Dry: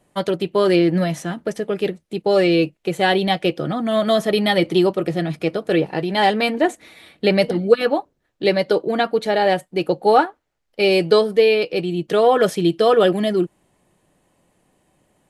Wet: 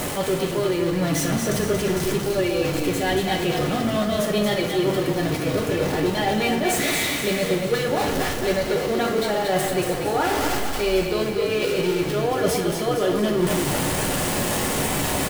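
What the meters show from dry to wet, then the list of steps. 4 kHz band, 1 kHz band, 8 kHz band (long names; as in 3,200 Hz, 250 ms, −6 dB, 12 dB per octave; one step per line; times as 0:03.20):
−1.5 dB, −4.0 dB, can't be measured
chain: converter with a step at zero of −18.5 dBFS
reversed playback
downward compressor, threshold −21 dBFS, peak gain reduction 14 dB
reversed playback
echo with shifted repeats 231 ms, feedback 51%, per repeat −32 Hz, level −5.5 dB
coupled-rooms reverb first 0.39 s, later 3.3 s, from −17 dB, DRR 1 dB
level −2.5 dB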